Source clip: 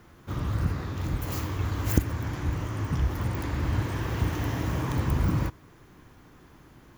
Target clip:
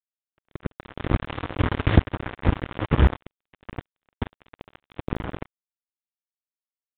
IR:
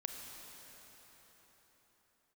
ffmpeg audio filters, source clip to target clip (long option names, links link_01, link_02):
-filter_complex "[0:a]asettb=1/sr,asplit=3[link_01][link_02][link_03];[link_01]atrim=end=0.794[link_04];[link_02]atrim=start=0.79:end=3.17,asetpts=PTS-STARTPTS,afade=type=in:duration=0.004:curve=qsin,afade=type=out:start_time=2.376:duration=0.004:curve=qsin,acontrast=62[link_05];[link_03]atrim=start=3.166[link_06];[link_04][link_05]acrossfade=duration=0.004:curve1=hsin:curve2=qsin[link_07];[link_07][link_06]acrossfade=duration=0.004:curve1=qsin:curve2=hsin,acrusher=bits=2:mix=0:aa=0.5,aresample=8000,aresample=44100,volume=2dB"